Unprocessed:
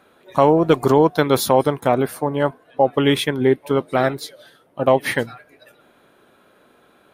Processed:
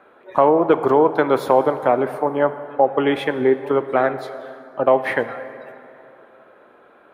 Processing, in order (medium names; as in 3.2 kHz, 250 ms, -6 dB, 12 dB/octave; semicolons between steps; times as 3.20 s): three-band isolator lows -12 dB, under 300 Hz, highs -20 dB, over 2.3 kHz; in parallel at +1 dB: compression, threshold -26 dBFS, peak gain reduction 15 dB; on the sum: plate-style reverb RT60 2.9 s, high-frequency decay 0.6×, DRR 11 dB; trim -1 dB